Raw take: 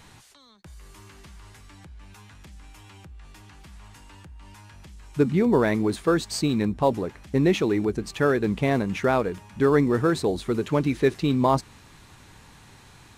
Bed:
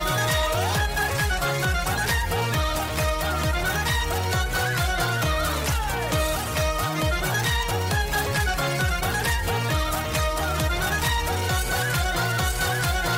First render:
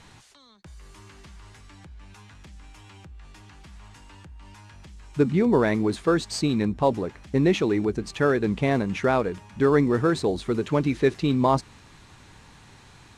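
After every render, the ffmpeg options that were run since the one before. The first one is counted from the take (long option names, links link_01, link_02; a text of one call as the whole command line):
ffmpeg -i in.wav -af "lowpass=8800" out.wav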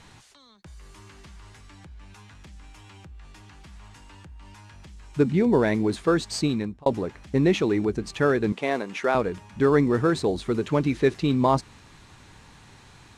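ffmpeg -i in.wav -filter_complex "[0:a]asettb=1/sr,asplit=3[link_01][link_02][link_03];[link_01]atrim=end=5.244[link_04];[link_02]atrim=start=5.24:end=5.89,asetpts=PTS-STARTPTS,afade=type=in:duration=0.004:curve=qsin,afade=type=out:start_time=0.646:duration=0.004:curve=qsin,equalizer=frequency=1200:width_type=o:width=0.31:gain=-6.5[link_05];[link_03]atrim=start=5.886[link_06];[link_04][link_05]acrossfade=duration=0.004:curve1=hsin:curve2=qsin[link_07];[link_07][link_06]acrossfade=duration=0.004:curve1=qsin:curve2=hsin,asettb=1/sr,asplit=3[link_08][link_09][link_10];[link_08]atrim=end=8.524[link_11];[link_09]atrim=start=8.52:end=9.15,asetpts=PTS-STARTPTS,afade=type=in:duration=0.004:curve=qsin,afade=type=out:start_time=0.626:duration=0.004:curve=qsin,highpass=370[link_12];[link_10]atrim=start=9.146[link_13];[link_11][link_12]acrossfade=duration=0.004:curve1=hsin:curve2=qsin[link_14];[link_14][link_13]acrossfade=duration=0.004:curve1=qsin:curve2=hsin,asplit=2[link_15][link_16];[link_15]atrim=end=6.86,asetpts=PTS-STARTPTS,afade=type=out:start_time=6.46:duration=0.4[link_17];[link_16]atrim=start=6.86,asetpts=PTS-STARTPTS,afade=type=in:duration=0.004:curve=hsin[link_18];[link_17][link_18]concat=n=2:v=0:a=1" out.wav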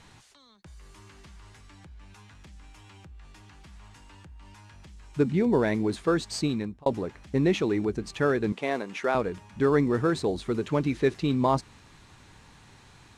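ffmpeg -i in.wav -af "volume=-3dB" out.wav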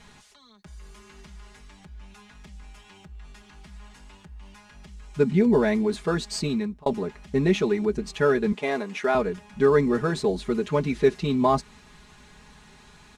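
ffmpeg -i in.wav -af "equalizer=frequency=60:width=1.5:gain=3.5,aecho=1:1:4.8:0.86" out.wav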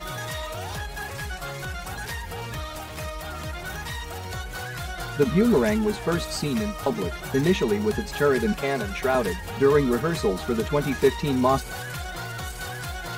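ffmpeg -i in.wav -i bed.wav -filter_complex "[1:a]volume=-9.5dB[link_01];[0:a][link_01]amix=inputs=2:normalize=0" out.wav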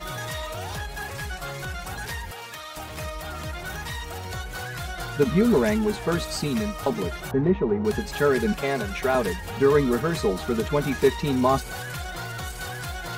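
ffmpeg -i in.wav -filter_complex "[0:a]asettb=1/sr,asplit=3[link_01][link_02][link_03];[link_01]atrim=end=2.314[link_04];[link_02]atrim=start=2.31:end=2.77,asetpts=PTS-STARTPTS,afade=type=in:duration=0.004:curve=qsin,afade=type=out:start_time=0.456:duration=0.004:curve=qsin,highpass=frequency=900:poles=1[link_05];[link_03]atrim=start=2.766[link_06];[link_04][link_05]acrossfade=duration=0.004:curve1=hsin:curve2=qsin[link_07];[link_07][link_06]acrossfade=duration=0.004:curve1=qsin:curve2=hsin,asettb=1/sr,asplit=3[link_08][link_09][link_10];[link_08]atrim=end=7.314[link_11];[link_09]atrim=start=7.31:end=7.85,asetpts=PTS-STARTPTS,afade=type=in:duration=0.004:curve=qsin,afade=type=out:start_time=0.536:duration=0.004:curve=qsin,lowpass=1100[link_12];[link_10]atrim=start=7.846[link_13];[link_11][link_12]acrossfade=duration=0.004:curve1=hsin:curve2=qsin[link_14];[link_14][link_13]acrossfade=duration=0.004:curve1=qsin:curve2=hsin" out.wav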